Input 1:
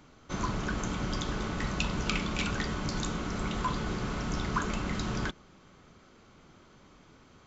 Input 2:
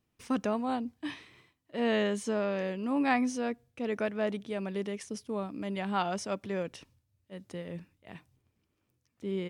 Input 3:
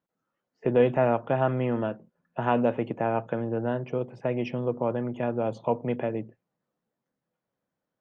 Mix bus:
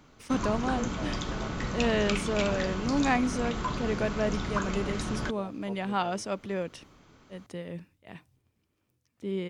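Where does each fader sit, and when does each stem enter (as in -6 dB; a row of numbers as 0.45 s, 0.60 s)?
-0.5 dB, +1.5 dB, -18.5 dB; 0.00 s, 0.00 s, 0.00 s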